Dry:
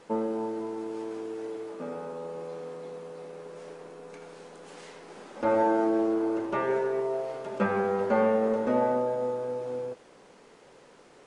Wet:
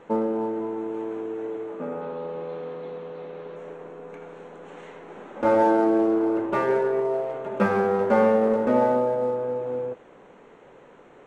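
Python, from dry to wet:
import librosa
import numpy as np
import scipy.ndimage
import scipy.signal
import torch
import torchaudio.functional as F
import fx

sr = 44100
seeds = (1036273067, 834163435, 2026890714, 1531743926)

y = fx.wiener(x, sr, points=9)
y = fx.lowpass_res(y, sr, hz=4100.0, q=2.7, at=(2.01, 3.56))
y = F.gain(torch.from_numpy(y), 5.0).numpy()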